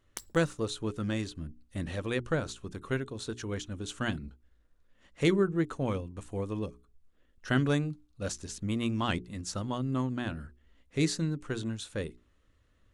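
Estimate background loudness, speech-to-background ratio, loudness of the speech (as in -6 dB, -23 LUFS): -45.5 LUFS, 12.5 dB, -33.0 LUFS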